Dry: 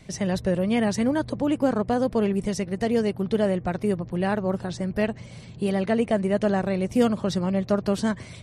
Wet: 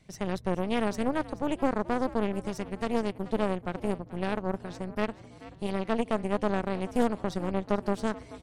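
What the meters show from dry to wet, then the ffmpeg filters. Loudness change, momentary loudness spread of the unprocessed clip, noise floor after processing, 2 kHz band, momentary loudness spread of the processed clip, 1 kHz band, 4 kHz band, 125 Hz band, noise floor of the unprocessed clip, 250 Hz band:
-6.0 dB, 6 LU, -50 dBFS, -4.5 dB, 6 LU, -1.5 dB, -6.0 dB, -8.0 dB, -43 dBFS, -7.0 dB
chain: -filter_complex "[0:a]aeval=exprs='0.398*(cos(1*acos(clip(val(0)/0.398,-1,1)))-cos(1*PI/2))+0.1*(cos(4*acos(clip(val(0)/0.398,-1,1)))-cos(4*PI/2))+0.0224*(cos(7*acos(clip(val(0)/0.398,-1,1)))-cos(7*PI/2))':c=same,asplit=5[a][b][c][d][e];[b]adelay=432,afreqshift=58,volume=-17.5dB[f];[c]adelay=864,afreqshift=116,volume=-24.8dB[g];[d]adelay=1296,afreqshift=174,volume=-32.2dB[h];[e]adelay=1728,afreqshift=232,volume=-39.5dB[i];[a][f][g][h][i]amix=inputs=5:normalize=0,volume=-7.5dB"

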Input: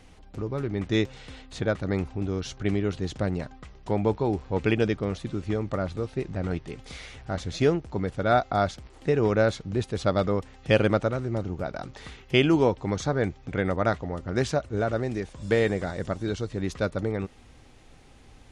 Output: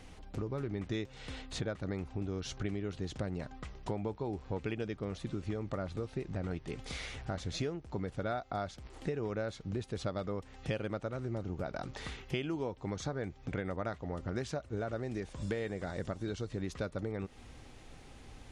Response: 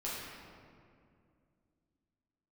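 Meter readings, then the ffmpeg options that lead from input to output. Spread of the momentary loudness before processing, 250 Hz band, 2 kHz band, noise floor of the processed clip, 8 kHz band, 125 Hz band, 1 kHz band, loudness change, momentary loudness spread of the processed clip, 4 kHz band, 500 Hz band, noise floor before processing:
11 LU, -11.0 dB, -12.0 dB, -54 dBFS, -6.5 dB, -9.5 dB, -12.5 dB, -11.5 dB, 6 LU, -10.0 dB, -12.5 dB, -52 dBFS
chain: -af "acompressor=threshold=-34dB:ratio=6"

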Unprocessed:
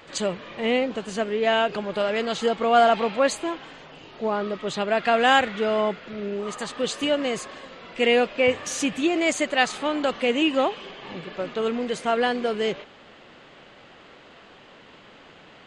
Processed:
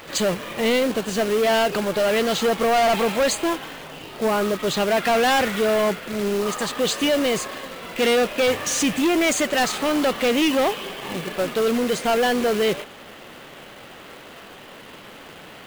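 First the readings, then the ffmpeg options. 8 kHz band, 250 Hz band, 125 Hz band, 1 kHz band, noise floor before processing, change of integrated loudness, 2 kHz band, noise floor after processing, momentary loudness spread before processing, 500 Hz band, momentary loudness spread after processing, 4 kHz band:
+7.5 dB, +4.0 dB, +6.0 dB, +1.0 dB, -50 dBFS, +2.5 dB, +1.5 dB, -42 dBFS, 12 LU, +3.0 dB, 22 LU, +3.5 dB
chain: -af "acrusher=bits=2:mode=log:mix=0:aa=0.000001,acontrast=71,asoftclip=type=hard:threshold=-16dB"

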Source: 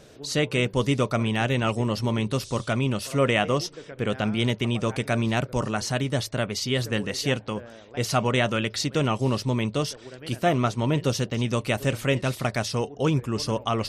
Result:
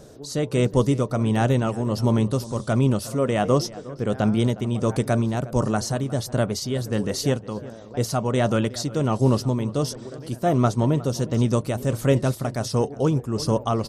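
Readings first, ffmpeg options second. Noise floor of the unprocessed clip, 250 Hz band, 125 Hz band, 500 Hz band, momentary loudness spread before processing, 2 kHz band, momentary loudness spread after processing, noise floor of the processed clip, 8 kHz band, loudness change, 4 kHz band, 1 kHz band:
-47 dBFS, +3.5 dB, +3.5 dB, +2.5 dB, 5 LU, -6.0 dB, 7 LU, -40 dBFS, +1.0 dB, +2.5 dB, -4.5 dB, +1.0 dB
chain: -filter_complex "[0:a]equalizer=f=2.5k:w=0.93:g=-13.5,tremolo=f=1.4:d=0.49,asplit=2[a][b];[b]adelay=360,lowpass=f=2k:p=1,volume=-17.5dB,asplit=2[c][d];[d]adelay=360,lowpass=f=2k:p=1,volume=0.39,asplit=2[e][f];[f]adelay=360,lowpass=f=2k:p=1,volume=0.39[g];[a][c][e][g]amix=inputs=4:normalize=0,volume=6dB"

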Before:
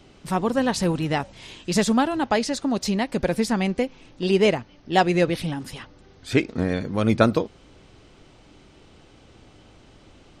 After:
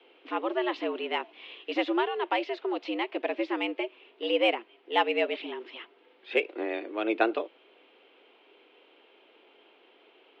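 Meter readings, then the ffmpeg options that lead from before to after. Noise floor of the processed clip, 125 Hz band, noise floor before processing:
-61 dBFS, under -40 dB, -53 dBFS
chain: -af "highpass=f=200:t=q:w=0.5412,highpass=f=200:t=q:w=1.307,lowpass=f=3.1k:t=q:w=0.5176,lowpass=f=3.1k:t=q:w=0.7071,lowpass=f=3.1k:t=q:w=1.932,afreqshift=110,bandreject=f=600:w=19,aexciter=amount=2.2:drive=5.7:freq=2.3k,volume=-6.5dB"

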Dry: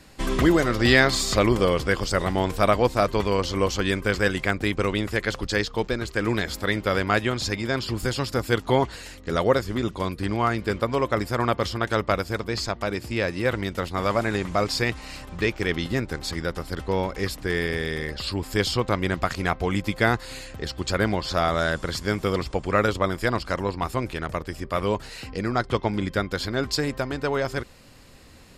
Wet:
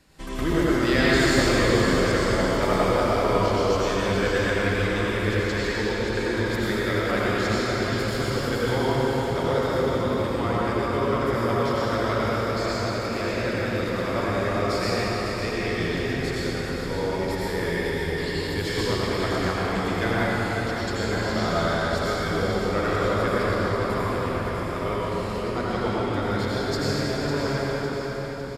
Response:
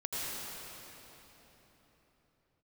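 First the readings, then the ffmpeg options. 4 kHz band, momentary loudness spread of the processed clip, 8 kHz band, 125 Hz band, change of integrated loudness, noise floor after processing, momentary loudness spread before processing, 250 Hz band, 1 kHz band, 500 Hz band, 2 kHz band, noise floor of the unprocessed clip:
-0.5 dB, 6 LU, -1.0 dB, +0.5 dB, +0.5 dB, -29 dBFS, 8 LU, +1.0 dB, +0.5 dB, +1.0 dB, -0.5 dB, -43 dBFS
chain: -filter_complex "[0:a]aecho=1:1:554|1108|1662|2216|2770|3324:0.398|0.191|0.0917|0.044|0.0211|0.0101[a];[1:a]atrim=start_sample=2205[b];[a][b]afir=irnorm=-1:irlink=0,volume=-6dB"

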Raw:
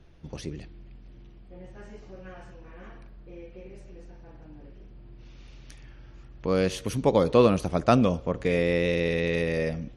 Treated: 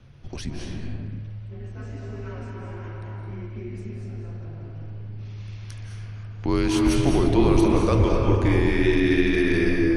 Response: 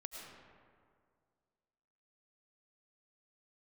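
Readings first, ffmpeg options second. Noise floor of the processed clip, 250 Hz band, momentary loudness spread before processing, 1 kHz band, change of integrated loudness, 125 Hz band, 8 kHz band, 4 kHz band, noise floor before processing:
-37 dBFS, +6.5 dB, 17 LU, +0.5 dB, +3.0 dB, +7.0 dB, +5.5 dB, +3.5 dB, -49 dBFS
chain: -filter_complex "[0:a]alimiter=limit=-17.5dB:level=0:latency=1:release=32,afreqshift=-150[a];[1:a]atrim=start_sample=2205,afade=t=out:st=0.41:d=0.01,atrim=end_sample=18522,asetrate=22491,aresample=44100[b];[a][b]afir=irnorm=-1:irlink=0,volume=7dB"

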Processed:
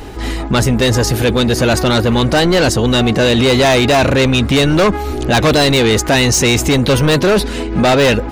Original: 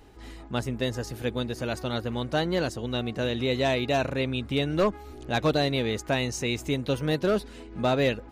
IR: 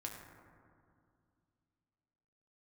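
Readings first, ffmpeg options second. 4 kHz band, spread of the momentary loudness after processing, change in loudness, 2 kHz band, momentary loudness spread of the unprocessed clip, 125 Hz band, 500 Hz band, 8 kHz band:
+17.0 dB, 4 LU, +15.5 dB, +16.0 dB, 7 LU, +16.0 dB, +14.0 dB, +22.0 dB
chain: -af "asoftclip=type=tanh:threshold=-21dB,apsyclip=31dB,volume=-8dB"

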